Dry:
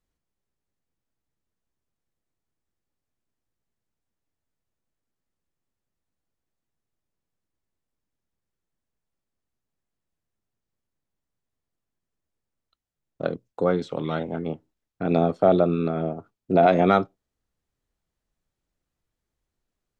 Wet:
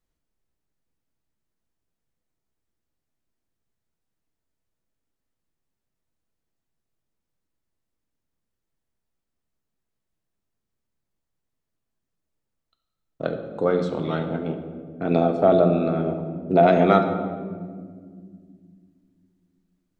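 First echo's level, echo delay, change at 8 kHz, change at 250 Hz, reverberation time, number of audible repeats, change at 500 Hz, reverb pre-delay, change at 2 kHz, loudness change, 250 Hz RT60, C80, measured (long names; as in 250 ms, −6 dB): no echo audible, no echo audible, can't be measured, +2.0 dB, 1.9 s, no echo audible, +2.0 dB, 3 ms, +1.0 dB, +1.5 dB, 3.6 s, 9.5 dB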